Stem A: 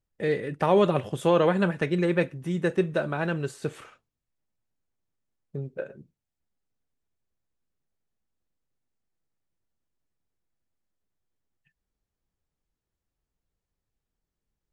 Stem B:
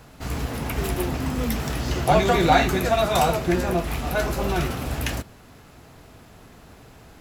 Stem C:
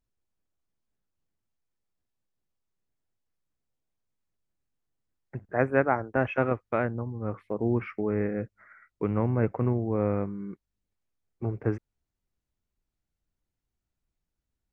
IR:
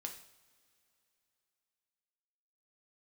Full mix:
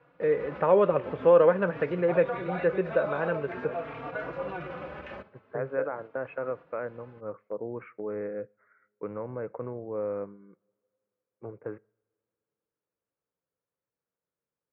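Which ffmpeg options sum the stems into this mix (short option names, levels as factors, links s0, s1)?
-filter_complex "[0:a]volume=1.06,asplit=2[s0][s1];[1:a]aemphasis=mode=production:type=50kf,asplit=2[s2][s3];[s3]adelay=3.7,afreqshift=0.46[s4];[s2][s4]amix=inputs=2:normalize=1,volume=0.891[s5];[2:a]volume=0.631,asplit=2[s6][s7];[s7]volume=0.119[s8];[s1]apad=whole_len=317790[s9];[s5][s9]sidechaincompress=threshold=0.0282:ratio=4:attack=16:release=156[s10];[s10][s6]amix=inputs=2:normalize=0,agate=range=0.501:threshold=0.0126:ratio=16:detection=peak,alimiter=limit=0.0891:level=0:latency=1:release=53,volume=1[s11];[3:a]atrim=start_sample=2205[s12];[s8][s12]afir=irnorm=-1:irlink=0[s13];[s0][s11][s13]amix=inputs=3:normalize=0,highpass=230,equalizer=f=230:t=q:w=4:g=-8,equalizer=f=350:t=q:w=4:g=-6,equalizer=f=510:t=q:w=4:g=6,equalizer=f=760:t=q:w=4:g=-6,equalizer=f=1900:t=q:w=4:g=-5,lowpass=f=2100:w=0.5412,lowpass=f=2100:w=1.3066"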